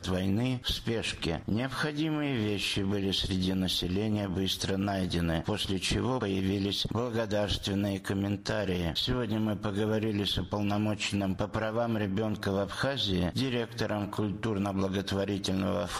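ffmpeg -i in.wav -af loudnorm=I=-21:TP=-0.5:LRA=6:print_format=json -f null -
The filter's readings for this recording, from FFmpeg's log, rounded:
"input_i" : "-30.7",
"input_tp" : "-18.0",
"input_lra" : "1.1",
"input_thresh" : "-40.7",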